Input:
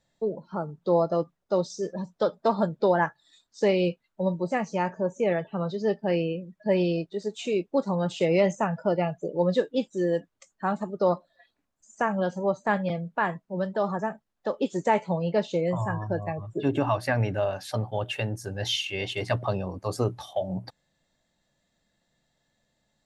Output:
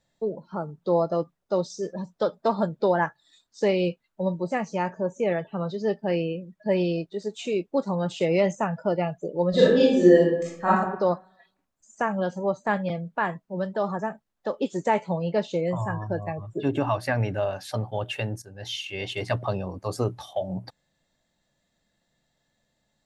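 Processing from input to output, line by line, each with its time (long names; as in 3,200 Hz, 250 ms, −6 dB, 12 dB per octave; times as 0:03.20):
0:09.50–0:10.68: thrown reverb, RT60 0.85 s, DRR −10 dB
0:18.42–0:19.13: fade in, from −14.5 dB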